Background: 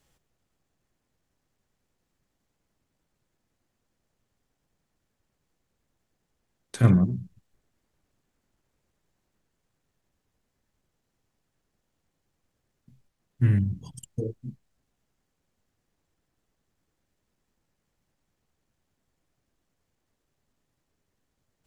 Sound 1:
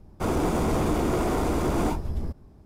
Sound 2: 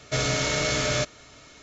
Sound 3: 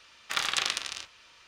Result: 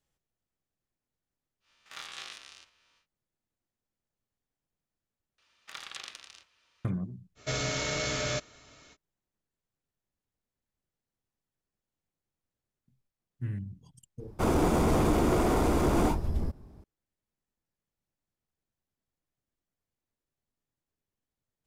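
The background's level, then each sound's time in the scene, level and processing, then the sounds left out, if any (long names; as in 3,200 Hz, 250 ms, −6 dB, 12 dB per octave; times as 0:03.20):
background −13.5 dB
0:01.60: mix in 3 −12 dB, fades 0.10 s + spectrum averaged block by block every 50 ms
0:05.38: overwrite with 3 −14.5 dB
0:07.35: mix in 2 −6.5 dB, fades 0.05 s
0:14.19: mix in 1 −0.5 dB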